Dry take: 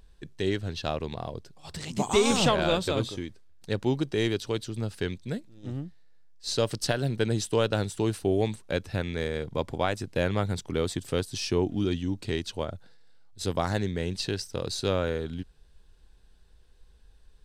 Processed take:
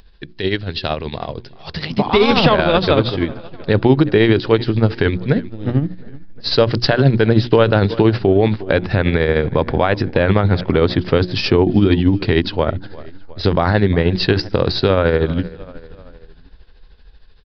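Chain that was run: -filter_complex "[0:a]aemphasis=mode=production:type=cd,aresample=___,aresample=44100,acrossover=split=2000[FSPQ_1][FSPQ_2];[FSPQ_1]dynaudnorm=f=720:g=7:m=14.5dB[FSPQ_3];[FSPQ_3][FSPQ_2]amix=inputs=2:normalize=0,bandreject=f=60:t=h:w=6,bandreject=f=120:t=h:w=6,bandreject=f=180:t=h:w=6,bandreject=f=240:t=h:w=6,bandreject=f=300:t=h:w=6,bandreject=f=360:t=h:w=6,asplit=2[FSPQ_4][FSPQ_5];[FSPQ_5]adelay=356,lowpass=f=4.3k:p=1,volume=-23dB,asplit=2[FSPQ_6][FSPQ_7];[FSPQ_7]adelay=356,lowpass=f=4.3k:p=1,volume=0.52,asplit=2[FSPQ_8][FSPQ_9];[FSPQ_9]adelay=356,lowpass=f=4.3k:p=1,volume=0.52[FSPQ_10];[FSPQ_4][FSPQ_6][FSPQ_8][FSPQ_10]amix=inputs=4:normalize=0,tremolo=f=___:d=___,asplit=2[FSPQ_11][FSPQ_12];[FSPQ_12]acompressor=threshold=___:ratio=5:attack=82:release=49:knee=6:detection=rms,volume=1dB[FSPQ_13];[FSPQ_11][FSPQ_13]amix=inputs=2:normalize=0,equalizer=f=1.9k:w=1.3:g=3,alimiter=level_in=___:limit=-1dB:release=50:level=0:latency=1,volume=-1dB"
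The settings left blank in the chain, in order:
11025, 13, 0.58, -28dB, 5.5dB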